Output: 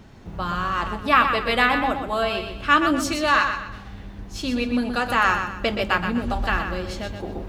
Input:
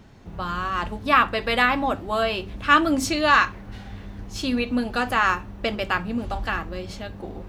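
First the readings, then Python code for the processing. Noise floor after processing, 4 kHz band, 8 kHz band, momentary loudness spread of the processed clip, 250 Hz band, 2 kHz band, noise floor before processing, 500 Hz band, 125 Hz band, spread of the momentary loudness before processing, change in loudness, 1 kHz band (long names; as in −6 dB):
−40 dBFS, +1.0 dB, 0.0 dB, 13 LU, +1.0 dB, +1.0 dB, −40 dBFS, +1.0 dB, +1.5 dB, 17 LU, +0.5 dB, +1.0 dB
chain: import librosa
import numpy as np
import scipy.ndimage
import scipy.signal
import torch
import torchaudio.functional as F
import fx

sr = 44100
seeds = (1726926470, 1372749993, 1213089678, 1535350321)

p1 = fx.rider(x, sr, range_db=3, speed_s=2.0)
y = p1 + fx.echo_feedback(p1, sr, ms=124, feedback_pct=36, wet_db=-7.5, dry=0)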